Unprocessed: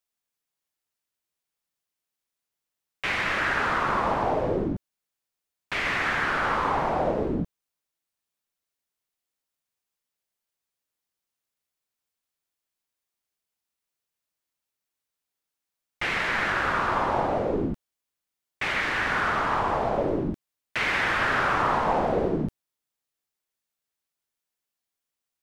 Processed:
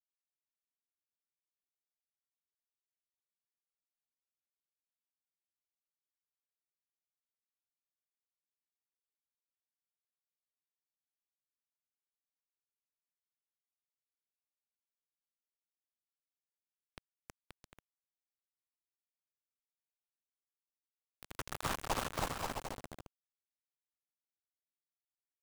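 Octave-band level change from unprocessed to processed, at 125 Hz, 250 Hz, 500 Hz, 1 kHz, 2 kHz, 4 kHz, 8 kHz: −18.5, −23.5, −23.5, −21.5, −26.0, −16.0, −4.5 decibels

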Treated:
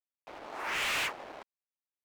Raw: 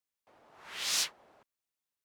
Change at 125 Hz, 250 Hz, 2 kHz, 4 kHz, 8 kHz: can't be measured, +10.5 dB, +9.0 dB, −2.5 dB, −8.0 dB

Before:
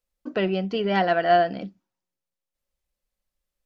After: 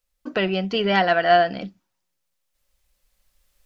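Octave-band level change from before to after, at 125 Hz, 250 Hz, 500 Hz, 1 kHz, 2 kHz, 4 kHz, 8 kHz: +1.0 dB, +1.0 dB, +2.0 dB, +2.5 dB, +5.5 dB, +7.0 dB, can't be measured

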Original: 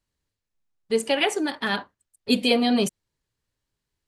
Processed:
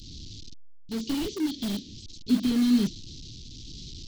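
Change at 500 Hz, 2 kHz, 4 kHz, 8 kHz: −14.5, −17.0, −8.5, −5.0 decibels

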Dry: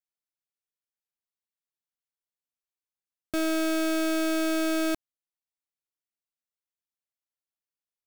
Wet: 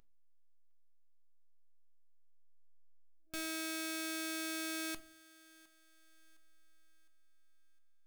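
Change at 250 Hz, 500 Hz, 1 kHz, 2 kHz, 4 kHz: −17.0, −19.0, −13.0, −8.5, −6.5 decibels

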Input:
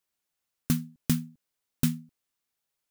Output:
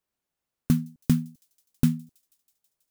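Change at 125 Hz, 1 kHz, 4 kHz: +5.0, +0.5, −4.0 decibels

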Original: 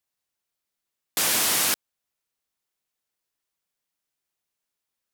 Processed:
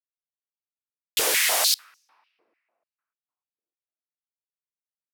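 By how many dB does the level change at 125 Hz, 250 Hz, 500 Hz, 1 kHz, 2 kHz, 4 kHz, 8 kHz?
below −10 dB, −7.5 dB, +4.5 dB, +1.0 dB, +3.0 dB, +3.0 dB, 0.0 dB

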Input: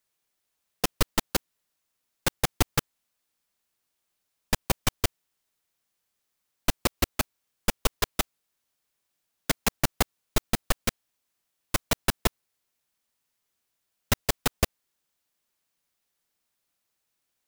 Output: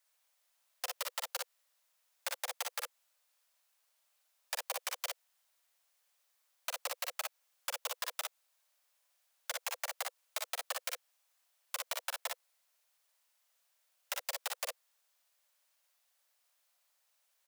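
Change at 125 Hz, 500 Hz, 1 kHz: below −40 dB, −13.5 dB, −10.0 dB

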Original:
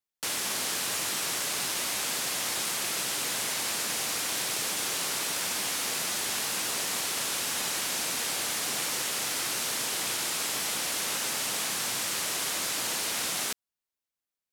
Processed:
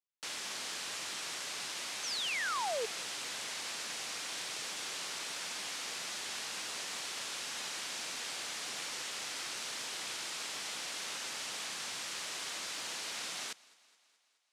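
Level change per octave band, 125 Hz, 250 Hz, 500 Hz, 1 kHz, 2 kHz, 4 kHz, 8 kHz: −14.5, −13.0, −6.5, −7.0, −7.0, −7.5, −11.5 decibels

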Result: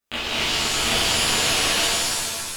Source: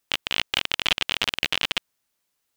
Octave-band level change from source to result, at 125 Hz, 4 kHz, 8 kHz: +10.5, +4.5, +17.0 decibels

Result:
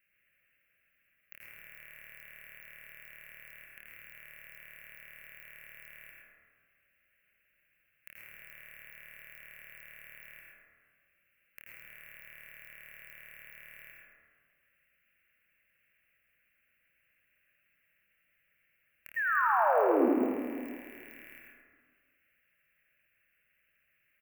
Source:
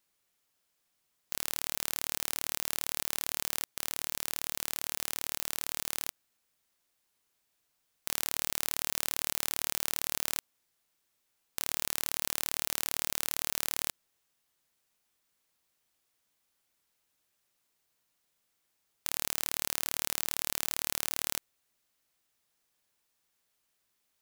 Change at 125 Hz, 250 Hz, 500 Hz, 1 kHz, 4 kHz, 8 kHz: −12.5, +13.5, +12.5, +9.5, −25.5, −31.5 decibels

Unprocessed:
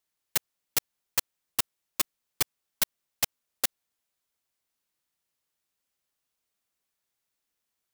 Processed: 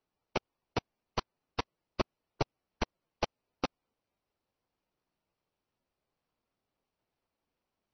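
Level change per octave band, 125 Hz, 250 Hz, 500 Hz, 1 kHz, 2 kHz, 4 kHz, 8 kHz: +7.5, +7.5, +7.5, +3.5, −5.5, −9.0, −22.5 decibels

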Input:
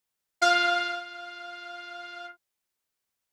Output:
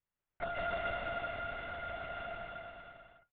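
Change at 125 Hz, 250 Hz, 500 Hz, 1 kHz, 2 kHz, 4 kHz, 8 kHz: can't be measured, −11.0 dB, −6.5 dB, −10.5 dB, −11.0 dB, −17.5 dB, below −35 dB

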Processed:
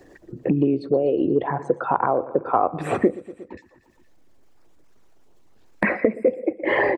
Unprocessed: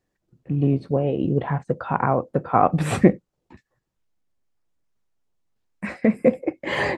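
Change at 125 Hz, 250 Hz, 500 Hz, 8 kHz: −8.0 dB, −1.5 dB, +2.5 dB, can't be measured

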